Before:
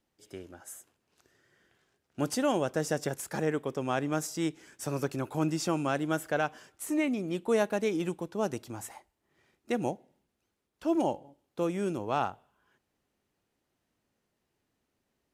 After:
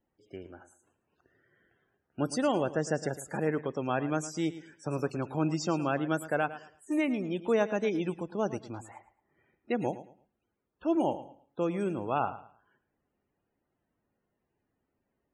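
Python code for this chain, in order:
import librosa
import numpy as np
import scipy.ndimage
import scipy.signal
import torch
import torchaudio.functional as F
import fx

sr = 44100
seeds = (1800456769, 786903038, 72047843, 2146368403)

y = fx.spec_topn(x, sr, count=64)
y = fx.echo_feedback(y, sr, ms=110, feedback_pct=26, wet_db=-14.5)
y = fx.env_lowpass(y, sr, base_hz=2600.0, full_db=-29.0)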